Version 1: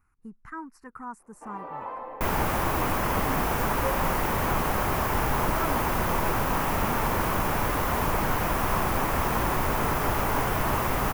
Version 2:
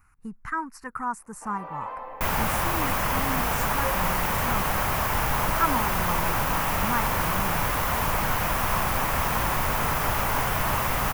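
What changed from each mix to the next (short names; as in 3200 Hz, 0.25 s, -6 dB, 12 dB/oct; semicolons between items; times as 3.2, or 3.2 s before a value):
speech +8.5 dB; master: add EQ curve 160 Hz 0 dB, 370 Hz -7 dB, 540 Hz -1 dB, 2900 Hz +4 dB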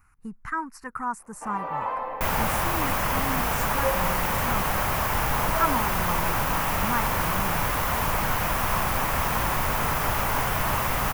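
first sound +6.5 dB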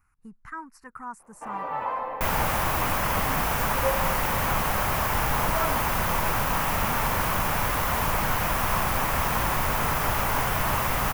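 speech -8.0 dB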